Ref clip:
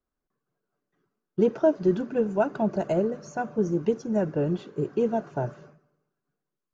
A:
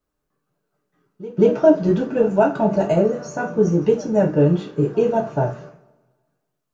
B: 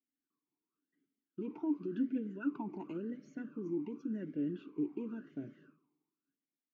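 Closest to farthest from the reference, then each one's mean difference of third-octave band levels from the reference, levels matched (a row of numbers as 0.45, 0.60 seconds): A, B; 2.5, 6.0 decibels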